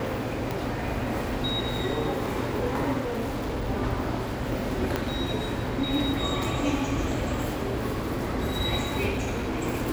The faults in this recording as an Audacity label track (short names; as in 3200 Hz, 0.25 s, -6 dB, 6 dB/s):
0.510000	0.510000	pop
2.990000	3.700000	clipped -25.5 dBFS
4.960000	4.960000	pop -12 dBFS
9.090000	9.640000	clipped -25 dBFS